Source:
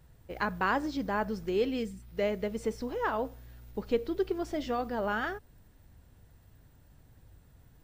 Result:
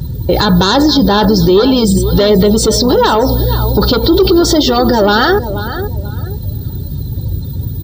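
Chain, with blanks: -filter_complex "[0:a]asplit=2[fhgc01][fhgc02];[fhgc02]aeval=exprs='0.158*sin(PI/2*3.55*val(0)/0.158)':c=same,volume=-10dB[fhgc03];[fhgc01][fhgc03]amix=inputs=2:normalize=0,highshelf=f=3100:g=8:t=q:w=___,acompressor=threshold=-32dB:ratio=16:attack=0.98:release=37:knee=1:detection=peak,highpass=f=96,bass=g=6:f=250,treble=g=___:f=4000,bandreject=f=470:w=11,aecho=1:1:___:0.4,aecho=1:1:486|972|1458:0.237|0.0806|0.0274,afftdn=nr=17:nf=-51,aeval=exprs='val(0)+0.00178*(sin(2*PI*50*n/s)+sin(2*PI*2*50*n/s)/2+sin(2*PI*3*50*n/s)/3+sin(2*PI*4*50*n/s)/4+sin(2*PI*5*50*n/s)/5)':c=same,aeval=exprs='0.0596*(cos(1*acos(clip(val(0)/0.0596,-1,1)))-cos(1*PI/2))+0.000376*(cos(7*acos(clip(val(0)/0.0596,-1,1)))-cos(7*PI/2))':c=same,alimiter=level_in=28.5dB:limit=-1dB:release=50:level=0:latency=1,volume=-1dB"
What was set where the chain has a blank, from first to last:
3, -5, 2.2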